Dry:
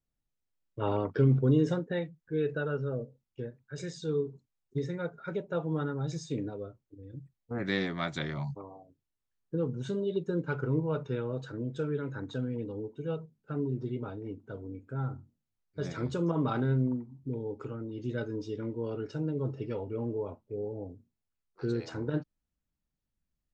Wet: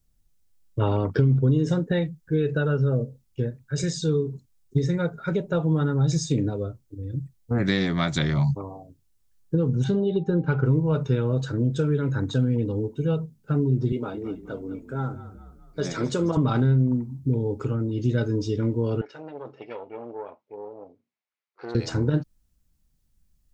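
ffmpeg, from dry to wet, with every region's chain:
ffmpeg -i in.wav -filter_complex "[0:a]asettb=1/sr,asplit=3[link_01][link_02][link_03];[link_01]atrim=end=9.844[link_04];[link_02]atrim=start=9.84:end=10.65,asetpts=PTS-STARTPTS,afade=type=in:duration=0.004:curve=qsin,afade=type=out:start_time=0.806:duration=0.004:curve=qsin,lowpass=3400,aeval=exprs='val(0)+0.00178*sin(2*PI*790*n/s)':channel_layout=same[link_05];[link_03]atrim=start=10.646[link_06];[link_04][link_05]acrossfade=duration=0.004:curve1=hsin:curve2=qsin[link_07];[link_07][link_06]acrossfade=duration=0.004:curve1=qsin:curve2=hsin,asettb=1/sr,asplit=3[link_08][link_09][link_10];[link_08]atrim=end=13.924[link_11];[link_09]atrim=start=13.92:end=16.37,asetpts=PTS-STARTPTS,afade=type=in:duration=0.004:curve=qsin,afade=type=out:start_time=2.446:duration=0.004:curve=qsin,highpass=250,asplit=5[link_12][link_13][link_14][link_15][link_16];[link_13]adelay=211,afreqshift=-34,volume=-13.5dB[link_17];[link_14]adelay=422,afreqshift=-68,volume=-20.2dB[link_18];[link_15]adelay=633,afreqshift=-102,volume=-27dB[link_19];[link_16]adelay=844,afreqshift=-136,volume=-33.7dB[link_20];[link_12][link_17][link_18][link_19][link_20]amix=inputs=5:normalize=0,atrim=end_sample=108045[link_21];[link_10]atrim=start=16.366[link_22];[link_11][link_21]acrossfade=duration=0.004:curve1=hsin:curve2=qsin[link_23];[link_23][link_22]acrossfade=duration=0.004:curve1=qsin:curve2=hsin,asettb=1/sr,asplit=3[link_24][link_25][link_26];[link_24]atrim=end=19.014[link_27];[link_25]atrim=start=19.01:end=21.75,asetpts=PTS-STARTPTS,afade=type=in:duration=0.004:curve=qsin,afade=type=out:start_time=2.736:duration=0.004:curve=qsin,equalizer=frequency=2200:width=4.6:gain=6,aeval=exprs='(tanh(20*val(0)+0.75)-tanh(0.75))/20':channel_layout=same,highpass=620,lowpass=2800[link_28];[link_26]atrim=start=21.746[link_29];[link_27][link_28]acrossfade=duration=0.004:curve1=hsin:curve2=qsin[link_30];[link_30][link_29]acrossfade=duration=0.004:curve1=qsin:curve2=hsin,lowshelf=frequency=62:gain=8,acompressor=threshold=-29dB:ratio=6,bass=frequency=250:gain=6,treble=frequency=4000:gain=8,volume=8dB" out.wav

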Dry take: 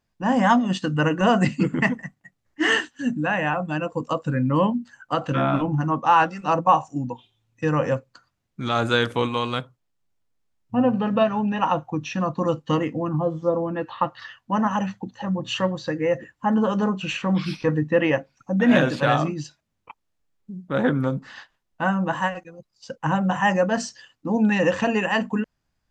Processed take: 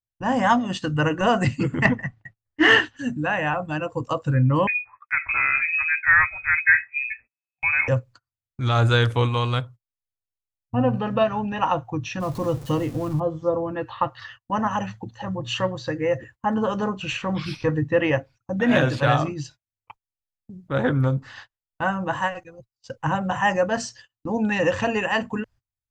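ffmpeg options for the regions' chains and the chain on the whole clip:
ffmpeg -i in.wav -filter_complex "[0:a]asettb=1/sr,asplit=3[link_01][link_02][link_03];[link_01]atrim=end=1.854[link_04];[link_02]atrim=start=1.85:end=2.97,asetpts=PTS-STARTPTS,afade=type=in:duration=0.004:curve=qsin,afade=type=out:start_time=1.116:duration=0.004:curve=qsin,lowpass=3700,acontrast=59[link_05];[link_03]atrim=start=2.966[link_06];[link_04][link_05]acrossfade=duration=0.004:curve1=hsin:curve2=qsin[link_07];[link_07][link_06]acrossfade=duration=0.004:curve1=qsin:curve2=hsin,asettb=1/sr,asplit=3[link_08][link_09][link_10];[link_08]atrim=end=4.674[link_11];[link_09]atrim=start=4.67:end=7.88,asetpts=PTS-STARTPTS,afade=type=in:duration=0.004:curve=qsin,afade=type=out:start_time=3.206:duration=0.004:curve=qsin,highpass=110,lowpass=frequency=2300:width_type=q:width=0.5098,lowpass=frequency=2300:width_type=q:width=0.6013,lowpass=frequency=2300:width_type=q:width=0.9,lowpass=frequency=2300:width_type=q:width=2.563,afreqshift=-2700[link_12];[link_10]atrim=start=7.876[link_13];[link_11][link_12]acrossfade=duration=0.004:curve1=hsin:curve2=qsin[link_14];[link_14][link_13]acrossfade=duration=0.004:curve1=qsin:curve2=hsin,asettb=1/sr,asplit=3[link_15][link_16][link_17];[link_15]atrim=end=12.204[link_18];[link_16]atrim=start=12.2:end=13.2,asetpts=PTS-STARTPTS,afade=type=in:duration=0.004:curve=qsin,afade=type=out:start_time=0.996:duration=0.004:curve=qsin,aeval=exprs='val(0)+0.5*0.0224*sgn(val(0))':channel_layout=same,equalizer=frequency=1900:width_type=o:width=2.2:gain=-7.5[link_19];[link_17]atrim=start=13.196[link_20];[link_18][link_19]acrossfade=duration=0.004:curve1=hsin:curve2=qsin[link_21];[link_21][link_20]acrossfade=duration=0.004:curve1=qsin:curve2=hsin,agate=range=-27dB:threshold=-44dB:ratio=16:detection=peak,lowshelf=frequency=140:width_type=q:width=3:gain=7" out.wav

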